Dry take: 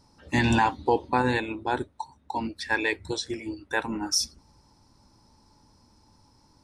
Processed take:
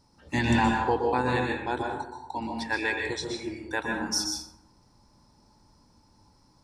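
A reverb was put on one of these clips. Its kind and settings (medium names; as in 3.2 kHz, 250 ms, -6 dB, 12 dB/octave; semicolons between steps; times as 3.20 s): plate-style reverb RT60 0.8 s, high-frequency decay 0.5×, pre-delay 110 ms, DRR 0.5 dB; trim -3.5 dB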